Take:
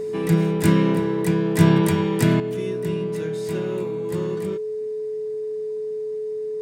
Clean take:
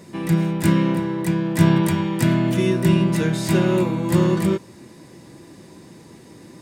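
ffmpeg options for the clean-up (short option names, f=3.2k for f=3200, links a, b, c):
-af "bandreject=f=430:w=30,asetnsamples=n=441:p=0,asendcmd='2.4 volume volume 11dB',volume=0dB"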